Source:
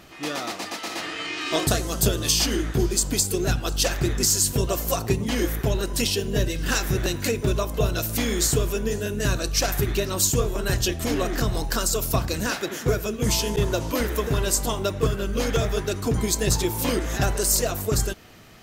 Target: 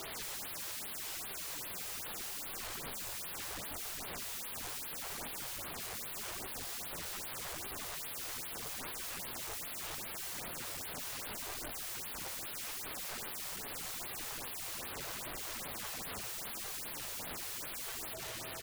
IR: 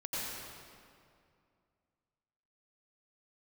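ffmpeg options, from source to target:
-filter_complex "[0:a]asplit=2[a][b];[1:a]atrim=start_sample=2205,asetrate=74970,aresample=44100[c];[b][c]afir=irnorm=-1:irlink=0,volume=-27dB[d];[a][d]amix=inputs=2:normalize=0,aeval=exprs='(tanh(25.1*val(0)+0.25)-tanh(0.25))/25.1':c=same,acrossover=split=6600[e][f];[e]alimiter=level_in=12dB:limit=-24dB:level=0:latency=1:release=122,volume=-12dB[g];[g][f]amix=inputs=2:normalize=0,aeval=exprs='val(0)+0.00708*sin(2*PI*650*n/s)':c=same,highpass=95,aecho=1:1:2.2:0.87,aeval=exprs='(mod(133*val(0)+1,2)-1)/133':c=same,flanger=delay=2.5:depth=9.5:regen=68:speed=0.78:shape=sinusoidal,afftfilt=real='re*(1-between(b*sr/1024,200*pow(7400/200,0.5+0.5*sin(2*PI*2.5*pts/sr))/1.41,200*pow(7400/200,0.5+0.5*sin(2*PI*2.5*pts/sr))*1.41))':imag='im*(1-between(b*sr/1024,200*pow(7400/200,0.5+0.5*sin(2*PI*2.5*pts/sr))/1.41,200*pow(7400/200,0.5+0.5*sin(2*PI*2.5*pts/sr))*1.41))':win_size=1024:overlap=0.75,volume=9.5dB"

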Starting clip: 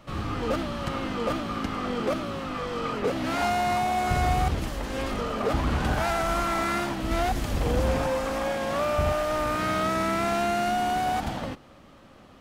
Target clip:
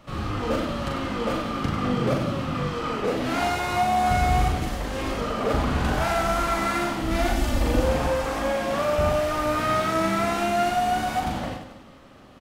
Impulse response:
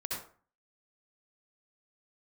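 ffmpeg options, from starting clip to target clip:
-filter_complex "[0:a]asettb=1/sr,asplit=3[a][b][c];[a]atrim=end=1.614[d];[b]atrim=start=1.61:end=2.7,asetpts=PTS-STARTPTS,afade=t=in:d=0.004:c=qsin,afade=t=out:st=1.086:d=0.004:c=qsin,equalizer=f=130:t=o:w=0.75:g=15[e];[c]atrim=start=2.696[f];[d][e]acrossfade=d=0.004:c1=hsin:c2=qsin[g];[g][f]acrossfade=d=0.004:c1=qsin:c2=hsin,asettb=1/sr,asplit=3[h][i][j];[h]atrim=end=7.144[k];[i]atrim=start=7.14:end=7.8,asetpts=PTS-STARTPTS,afade=t=in:d=0.004:c=qsin,afade=t=out:st=0.656:d=0.004:c=qsin,aecho=1:1:3.4:0.65,atrim=end_sample=29106[l];[j]atrim=start=7.796[m];[k][l]acrossfade=d=0.004:c1=hsin:c2=qsin[n];[n][m]acrossfade=d=0.004:c1=qsin:c2=hsin,aecho=1:1:40|96|174.4|284.2|437.8:0.631|0.398|0.251|0.158|0.1"

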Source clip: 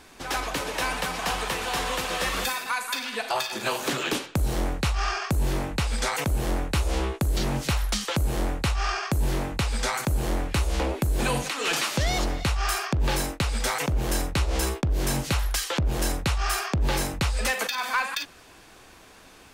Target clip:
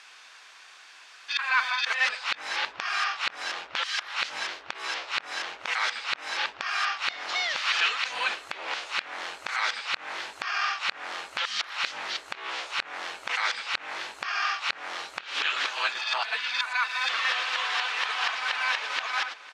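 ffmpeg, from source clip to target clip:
-filter_complex "[0:a]areverse,acrossover=split=4800[a][b];[b]acompressor=threshold=-54dB:ratio=4[c];[a][c]amix=inputs=2:normalize=0,asuperpass=centerf=2800:order=4:qfactor=0.55,asplit=2[d][e];[e]adelay=502,lowpass=f=2.2k:p=1,volume=-16.5dB,asplit=2[f][g];[g]adelay=502,lowpass=f=2.2k:p=1,volume=0.5,asplit=2[h][i];[i]adelay=502,lowpass=f=2.2k:p=1,volume=0.5,asplit=2[j][k];[k]adelay=502,lowpass=f=2.2k:p=1,volume=0.5[l];[d][f][h][j][l]amix=inputs=5:normalize=0,volume=4dB"

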